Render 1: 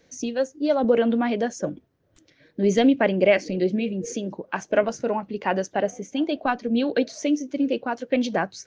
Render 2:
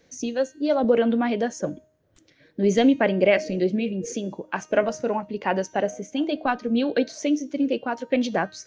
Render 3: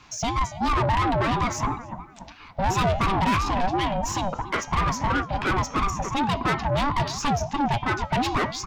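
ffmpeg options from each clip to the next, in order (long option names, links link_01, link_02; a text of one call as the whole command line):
ffmpeg -i in.wav -af "bandreject=frequency=310.6:width_type=h:width=4,bandreject=frequency=621.2:width_type=h:width=4,bandreject=frequency=931.8:width_type=h:width=4,bandreject=frequency=1242.4:width_type=h:width=4,bandreject=frequency=1553:width_type=h:width=4,bandreject=frequency=1863.6:width_type=h:width=4,bandreject=frequency=2174.2:width_type=h:width=4,bandreject=frequency=2484.8:width_type=h:width=4,bandreject=frequency=2795.4:width_type=h:width=4,bandreject=frequency=3106:width_type=h:width=4,bandreject=frequency=3416.6:width_type=h:width=4,bandreject=frequency=3727.2:width_type=h:width=4,bandreject=frequency=4037.8:width_type=h:width=4,bandreject=frequency=4348.4:width_type=h:width=4,bandreject=frequency=4659:width_type=h:width=4,bandreject=frequency=4969.6:width_type=h:width=4,bandreject=frequency=5280.2:width_type=h:width=4,bandreject=frequency=5590.8:width_type=h:width=4,bandreject=frequency=5901.4:width_type=h:width=4,bandreject=frequency=6212:width_type=h:width=4,bandreject=frequency=6522.6:width_type=h:width=4,bandreject=frequency=6833.2:width_type=h:width=4,bandreject=frequency=7143.8:width_type=h:width=4,bandreject=frequency=7454.4:width_type=h:width=4,bandreject=frequency=7765:width_type=h:width=4,bandreject=frequency=8075.6:width_type=h:width=4,bandreject=frequency=8386.2:width_type=h:width=4,bandreject=frequency=8696.8:width_type=h:width=4,bandreject=frequency=9007.4:width_type=h:width=4,bandreject=frequency=9318:width_type=h:width=4,bandreject=frequency=9628.6:width_type=h:width=4" out.wav
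ffmpeg -i in.wav -filter_complex "[0:a]asplit=2[link_01][link_02];[link_02]adelay=287,lowpass=frequency=1600:poles=1,volume=-17dB,asplit=2[link_03][link_04];[link_04]adelay=287,lowpass=frequency=1600:poles=1,volume=0.4,asplit=2[link_05][link_06];[link_06]adelay=287,lowpass=frequency=1600:poles=1,volume=0.4[link_07];[link_01][link_03][link_05][link_07]amix=inputs=4:normalize=0,asplit=2[link_08][link_09];[link_09]highpass=frequency=720:poles=1,volume=30dB,asoftclip=type=tanh:threshold=-5.5dB[link_10];[link_08][link_10]amix=inputs=2:normalize=0,lowpass=frequency=3100:poles=1,volume=-6dB,aeval=exprs='val(0)*sin(2*PI*470*n/s+470*0.25/2.9*sin(2*PI*2.9*n/s))':channel_layout=same,volume=-6.5dB" out.wav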